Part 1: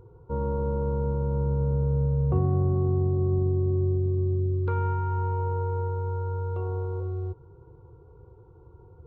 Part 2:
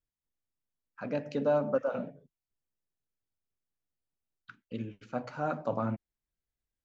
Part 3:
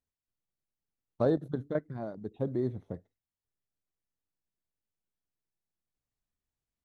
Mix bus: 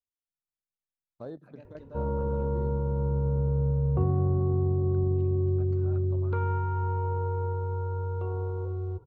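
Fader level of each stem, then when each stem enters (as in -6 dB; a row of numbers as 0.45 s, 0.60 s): -1.5 dB, -19.5 dB, -14.0 dB; 1.65 s, 0.45 s, 0.00 s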